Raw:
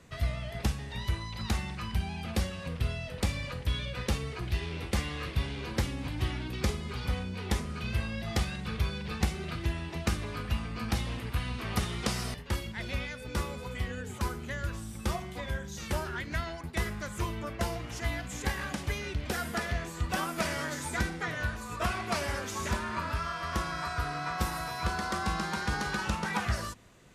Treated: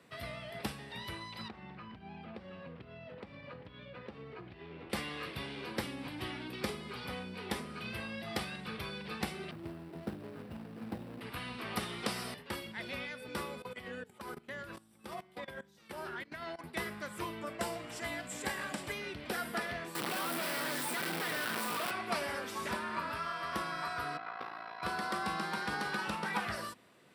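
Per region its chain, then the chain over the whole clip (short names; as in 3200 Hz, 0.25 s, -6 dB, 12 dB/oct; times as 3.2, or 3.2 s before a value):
1.48–4.9 compressor 12:1, threshold -34 dBFS + tape spacing loss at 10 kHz 33 dB
9.51–11.21 median filter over 41 samples + HPF 71 Hz
13.62–16.59 bell 620 Hz +2.5 dB 2.2 oct + level quantiser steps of 19 dB
17.41–18.92 bell 7600 Hz +10.5 dB 0.39 oct + whine 610 Hz -50 dBFS
19.95–21.91 infinite clipping + HPF 130 Hz 24 dB/oct + fast leveller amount 100%
24.17–24.83 HPF 540 Hz 6 dB/oct + ring modulator 28 Hz + air absorption 290 m
whole clip: HPF 210 Hz 12 dB/oct; bell 6600 Hz -13 dB 0.32 oct; gain -2.5 dB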